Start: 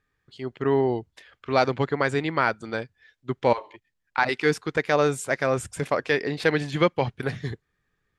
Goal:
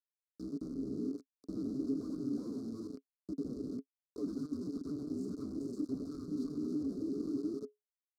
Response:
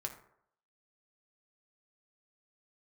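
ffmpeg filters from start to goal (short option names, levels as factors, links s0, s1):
-filter_complex "[0:a]asplit=2[s0][s1];[s1]asplit=5[s2][s3][s4][s5][s6];[s2]adelay=87,afreqshift=-93,volume=0.422[s7];[s3]adelay=174,afreqshift=-186,volume=0.191[s8];[s4]adelay=261,afreqshift=-279,volume=0.0851[s9];[s5]adelay=348,afreqshift=-372,volume=0.0385[s10];[s6]adelay=435,afreqshift=-465,volume=0.0174[s11];[s7][s8][s9][s10][s11]amix=inputs=5:normalize=0[s12];[s0][s12]amix=inputs=2:normalize=0,afreqshift=-450,highshelf=f=3900:g=-11.5,acrusher=bits=5:mix=0:aa=0.000001,aeval=exprs='(tanh(39.8*val(0)+0.45)-tanh(0.45))/39.8':c=same,asuperstop=centerf=2400:order=12:qfactor=0.75,acompressor=threshold=0.02:ratio=6,equalizer=f=420:w=7.6:g=9.5,areverse,acompressor=mode=upward:threshold=0.00631:ratio=2.5,areverse,asplit=3[s13][s14][s15];[s13]bandpass=f=270:t=q:w=8,volume=1[s16];[s14]bandpass=f=2290:t=q:w=8,volume=0.501[s17];[s15]bandpass=f=3010:t=q:w=8,volume=0.355[s18];[s16][s17][s18]amix=inputs=3:normalize=0,volume=3.76"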